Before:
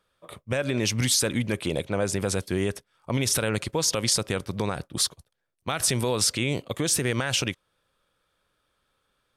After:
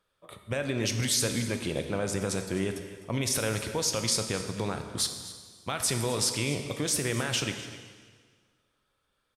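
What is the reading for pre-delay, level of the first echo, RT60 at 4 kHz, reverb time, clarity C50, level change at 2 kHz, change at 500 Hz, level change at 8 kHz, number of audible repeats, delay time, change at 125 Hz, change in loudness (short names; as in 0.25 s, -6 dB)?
4 ms, -16.0 dB, 1.6 s, 1.7 s, 7.0 dB, -3.5 dB, -3.5 dB, -3.5 dB, 1, 0.255 s, -3.5 dB, -3.5 dB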